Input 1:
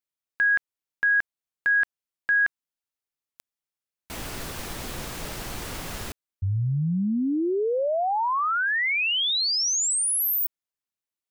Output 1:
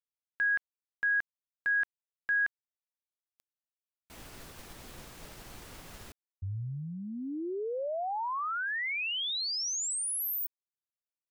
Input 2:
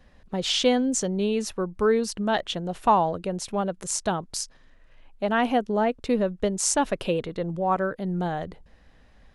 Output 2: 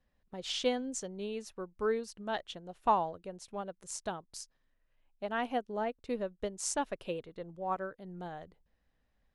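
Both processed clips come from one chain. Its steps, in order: dynamic EQ 190 Hz, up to -4 dB, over -36 dBFS, Q 1.2; upward expander 1.5:1, over -43 dBFS; gain -7 dB

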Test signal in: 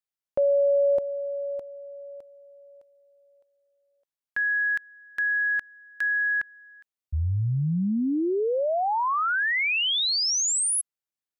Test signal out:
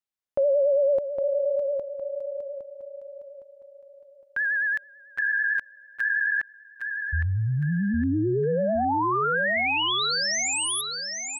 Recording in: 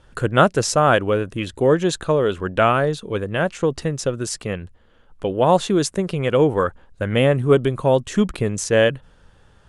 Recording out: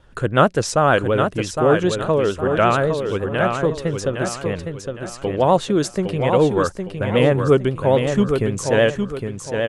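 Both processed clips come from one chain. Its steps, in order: high shelf 5000 Hz -5 dB; vibrato 9.1 Hz 68 cents; on a send: feedback echo 0.811 s, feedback 36%, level -6 dB

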